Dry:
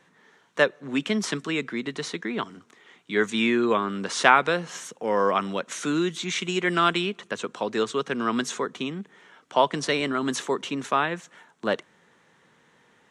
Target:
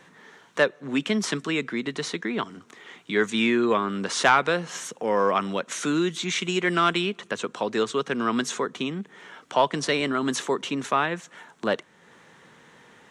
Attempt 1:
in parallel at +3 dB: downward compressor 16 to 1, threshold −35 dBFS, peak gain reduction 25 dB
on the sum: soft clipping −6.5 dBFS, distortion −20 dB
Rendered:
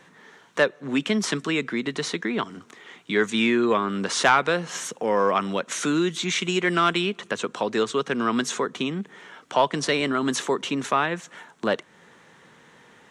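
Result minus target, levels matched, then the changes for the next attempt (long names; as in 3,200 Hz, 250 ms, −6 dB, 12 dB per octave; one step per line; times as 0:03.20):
downward compressor: peak gain reduction −8 dB
change: downward compressor 16 to 1, threshold −43.5 dBFS, peak gain reduction 33 dB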